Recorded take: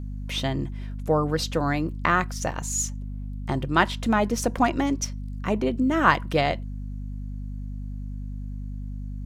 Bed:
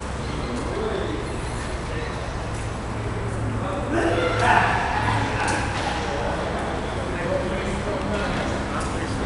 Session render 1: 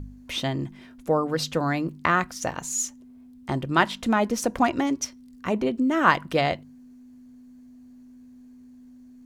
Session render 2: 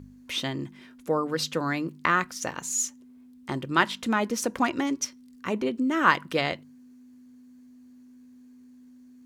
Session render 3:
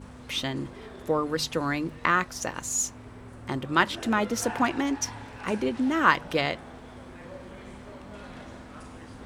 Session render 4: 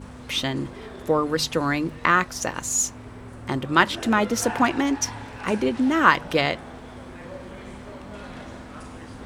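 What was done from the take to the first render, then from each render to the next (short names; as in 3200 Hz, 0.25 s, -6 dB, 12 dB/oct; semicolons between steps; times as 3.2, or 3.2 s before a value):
de-hum 50 Hz, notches 4
HPF 240 Hz 6 dB/oct; bell 700 Hz -7.5 dB 0.57 oct
add bed -19 dB
gain +4.5 dB; limiter -2 dBFS, peak gain reduction 2 dB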